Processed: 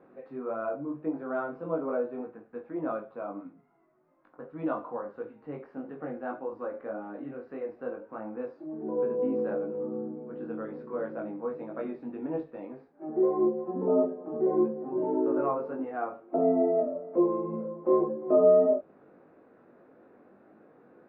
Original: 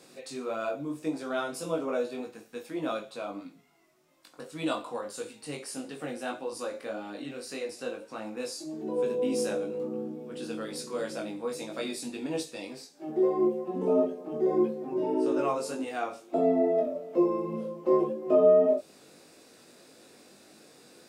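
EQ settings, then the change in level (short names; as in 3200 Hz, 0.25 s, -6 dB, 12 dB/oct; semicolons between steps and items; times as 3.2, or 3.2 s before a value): LPF 1500 Hz 24 dB/oct; notches 50/100/150 Hz; 0.0 dB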